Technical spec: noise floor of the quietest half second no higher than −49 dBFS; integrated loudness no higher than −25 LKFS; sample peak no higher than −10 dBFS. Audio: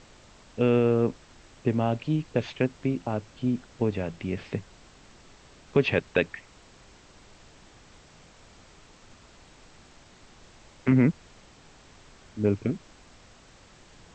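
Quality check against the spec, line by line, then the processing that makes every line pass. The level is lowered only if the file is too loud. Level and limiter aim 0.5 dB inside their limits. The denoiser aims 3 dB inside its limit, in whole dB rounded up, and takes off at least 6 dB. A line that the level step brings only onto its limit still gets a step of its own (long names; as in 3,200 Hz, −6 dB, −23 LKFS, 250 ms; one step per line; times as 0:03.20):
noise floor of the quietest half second −54 dBFS: in spec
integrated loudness −27.5 LKFS: in spec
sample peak −8.5 dBFS: out of spec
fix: brickwall limiter −10.5 dBFS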